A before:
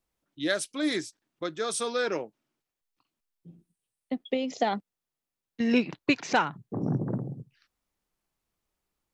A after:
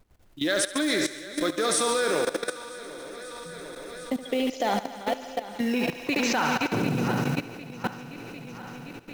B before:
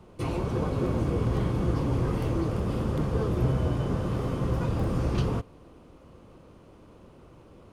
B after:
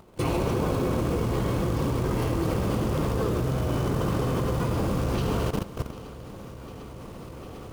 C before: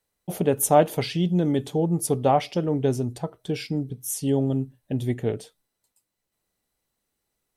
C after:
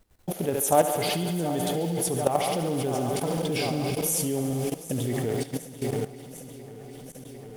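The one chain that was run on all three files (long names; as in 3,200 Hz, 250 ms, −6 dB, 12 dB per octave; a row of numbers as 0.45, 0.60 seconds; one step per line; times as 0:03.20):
feedback delay that plays each chunk backwards 375 ms, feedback 75%, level −12 dB
in parallel at −0.5 dB: downward compressor 10 to 1, threshold −30 dBFS
on the sum: log-companded quantiser 6 bits
background noise brown −58 dBFS
pitch vibrato 1.3 Hz 12 cents
on a send: feedback echo with a high-pass in the loop 71 ms, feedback 83%, high-pass 310 Hz, level −9 dB
on the sum: output level in coarse steps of 15 dB
low-shelf EQ 200 Hz −3.5 dB
boost into a limiter +12 dB
loudness normalisation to −27 LKFS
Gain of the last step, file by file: −6.0, −5.5, −8.0 decibels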